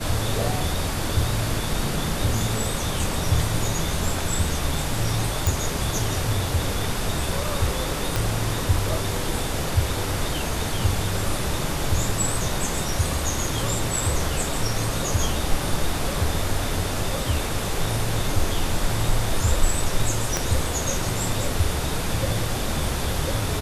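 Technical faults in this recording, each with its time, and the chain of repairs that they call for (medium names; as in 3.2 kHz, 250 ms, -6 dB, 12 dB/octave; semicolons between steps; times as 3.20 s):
5.47 s: pop
8.16 s: pop
20.37 s: pop -7 dBFS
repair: de-click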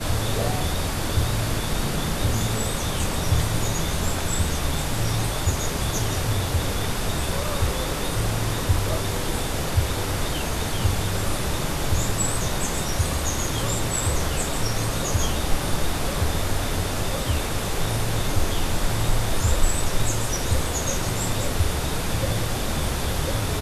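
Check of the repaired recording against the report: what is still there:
8.16 s: pop
20.37 s: pop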